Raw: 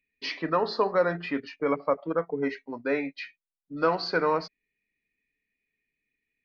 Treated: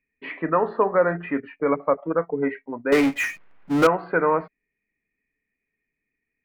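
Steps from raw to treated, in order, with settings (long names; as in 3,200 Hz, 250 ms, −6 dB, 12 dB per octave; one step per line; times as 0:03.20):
inverse Chebyshev low-pass filter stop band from 5,400 Hz, stop band 50 dB
0:02.92–0:03.87: power curve on the samples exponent 0.5
level +4.5 dB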